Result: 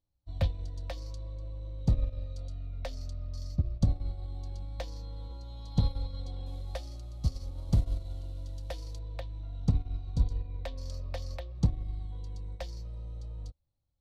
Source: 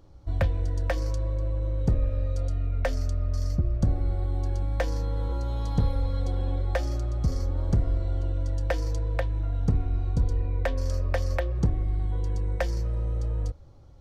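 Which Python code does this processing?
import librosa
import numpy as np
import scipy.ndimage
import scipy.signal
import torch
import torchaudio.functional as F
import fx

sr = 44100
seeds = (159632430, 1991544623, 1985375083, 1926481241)

y = fx.cvsd(x, sr, bps=64000, at=(6.46, 8.99))
y = fx.graphic_eq_15(y, sr, hz=(400, 1600, 4000), db=(-8, -10, 10))
y = fx.upward_expand(y, sr, threshold_db=-39.0, expansion=2.5)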